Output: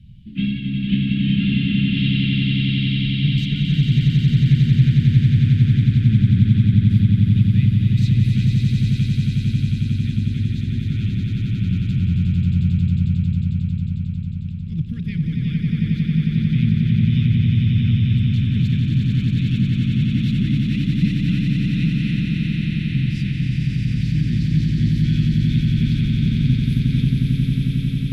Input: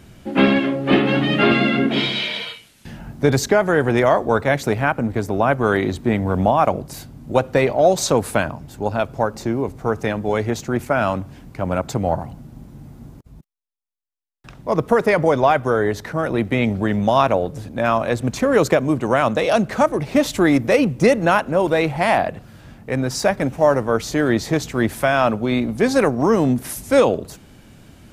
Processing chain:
elliptic band-stop filter 170–3,200 Hz, stop band 80 dB
high-frequency loss of the air 500 metres
echo that builds up and dies away 90 ms, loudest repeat 8, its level −4 dB
level +4 dB

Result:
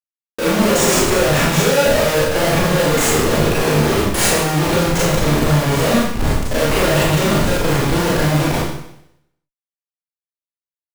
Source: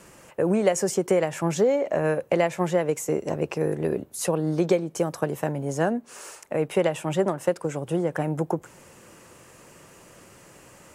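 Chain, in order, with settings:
comparator with hysteresis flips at −33.5 dBFS
four-comb reverb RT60 0.77 s, combs from 27 ms, DRR −7 dB
level +4.5 dB

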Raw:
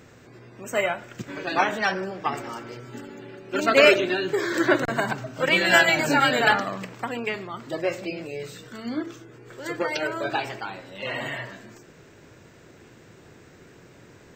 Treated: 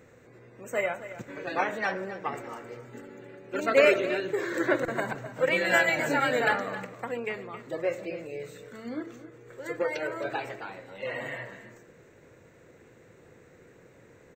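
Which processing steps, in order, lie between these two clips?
thirty-one-band graphic EQ 500 Hz +9 dB, 2,000 Hz +4 dB, 3,150 Hz −6 dB, 5,000 Hz −10 dB
single-tap delay 267 ms −14 dB
level −7 dB

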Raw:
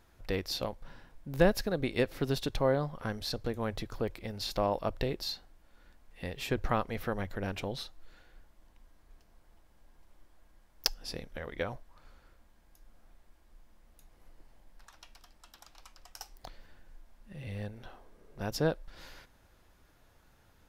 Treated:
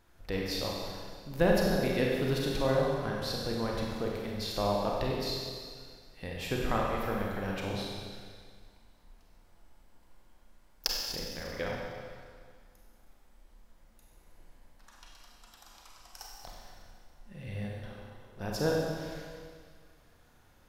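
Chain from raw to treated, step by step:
four-comb reverb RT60 1.9 s, combs from 31 ms, DRR −2.5 dB
level −2.5 dB

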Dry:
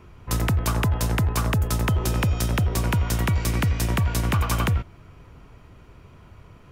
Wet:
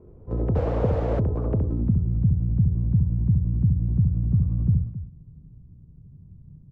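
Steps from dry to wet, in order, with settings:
loudspeakers that aren't time-aligned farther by 23 metres −4 dB, 92 metres −12 dB
sound drawn into the spectrogram noise, 0:00.55–0:01.20, 440–8,000 Hz −16 dBFS
low-pass filter sweep 470 Hz → 160 Hz, 0:01.53–0:02.04
level −3.5 dB

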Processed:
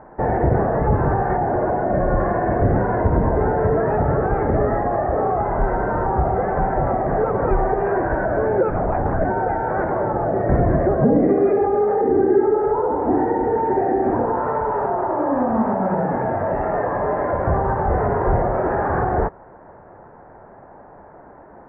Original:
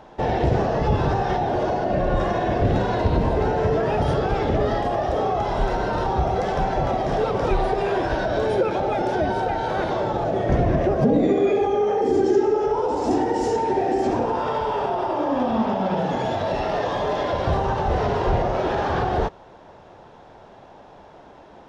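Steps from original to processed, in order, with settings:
0:08.70–0:09.25: linear-prediction vocoder at 8 kHz whisper
Butterworth low-pass 1,900 Hz 48 dB per octave
level +2.5 dB

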